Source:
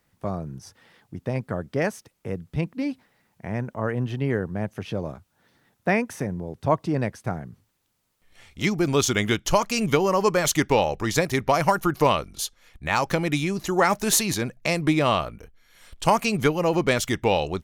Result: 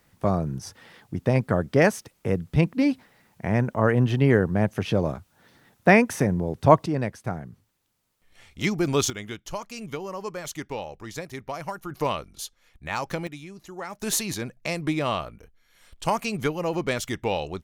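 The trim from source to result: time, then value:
+6 dB
from 6.86 s -1.5 dB
from 9.10 s -13 dB
from 11.91 s -6.5 dB
from 13.27 s -16 dB
from 14.02 s -5 dB

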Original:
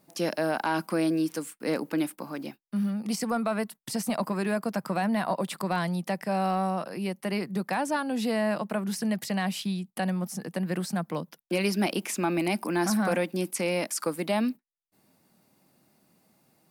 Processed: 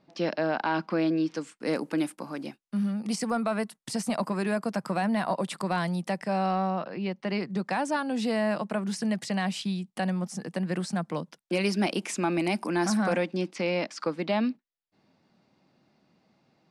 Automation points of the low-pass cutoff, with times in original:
low-pass 24 dB/octave
1.22 s 4.6 kHz
1.76 s 10 kHz
6.12 s 10 kHz
6.91 s 3.9 kHz
7.81 s 8.9 kHz
12.98 s 8.9 kHz
13.53 s 5.1 kHz

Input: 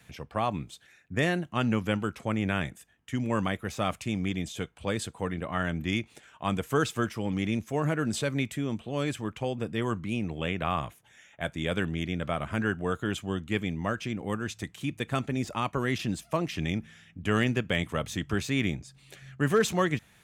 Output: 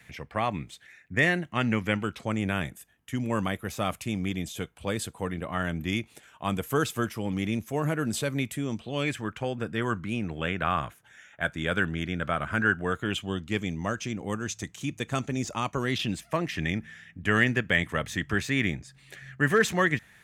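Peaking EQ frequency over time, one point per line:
peaking EQ +10 dB 0.5 oct
2.00 s 2 kHz
2.50 s 12 kHz
8.49 s 12 kHz
9.22 s 1.5 kHz
12.82 s 1.5 kHz
13.61 s 6.4 kHz
15.77 s 6.4 kHz
16.24 s 1.8 kHz

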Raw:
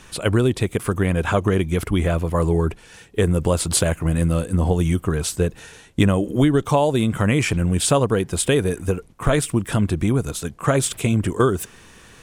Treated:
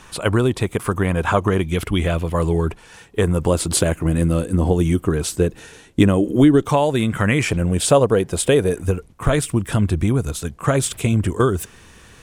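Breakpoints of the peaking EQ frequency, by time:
peaking EQ +6 dB 0.98 oct
1 kHz
from 1.63 s 3.1 kHz
from 2.70 s 1 kHz
from 3.48 s 320 Hz
from 6.69 s 1.8 kHz
from 7.42 s 550 Hz
from 8.83 s 73 Hz

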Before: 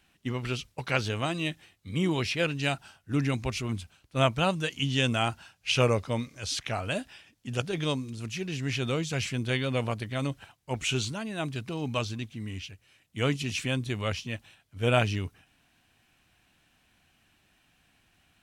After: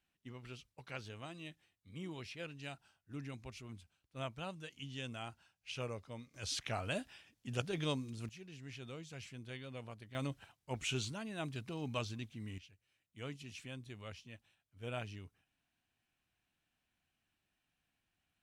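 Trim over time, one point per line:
-18.5 dB
from 6.34 s -7.5 dB
from 8.29 s -19 dB
from 10.15 s -9 dB
from 12.58 s -18.5 dB

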